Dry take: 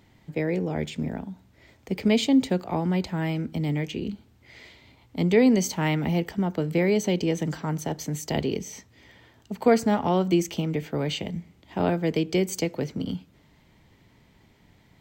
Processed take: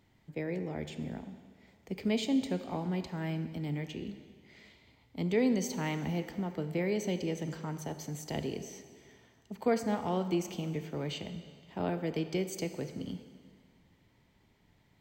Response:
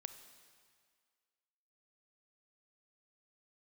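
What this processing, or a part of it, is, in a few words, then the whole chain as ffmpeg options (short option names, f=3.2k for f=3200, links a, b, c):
stairwell: -filter_complex "[1:a]atrim=start_sample=2205[a];[0:a][a]afir=irnorm=-1:irlink=0,volume=-5dB"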